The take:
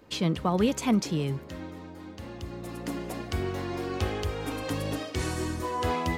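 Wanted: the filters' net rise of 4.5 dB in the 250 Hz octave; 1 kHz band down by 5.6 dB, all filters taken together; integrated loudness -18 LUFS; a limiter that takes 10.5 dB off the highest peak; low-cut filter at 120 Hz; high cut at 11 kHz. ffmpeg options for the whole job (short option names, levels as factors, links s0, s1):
-af "highpass=120,lowpass=11000,equalizer=f=250:t=o:g=6.5,equalizer=f=1000:t=o:g=-7.5,volume=5.01,alimiter=limit=0.447:level=0:latency=1"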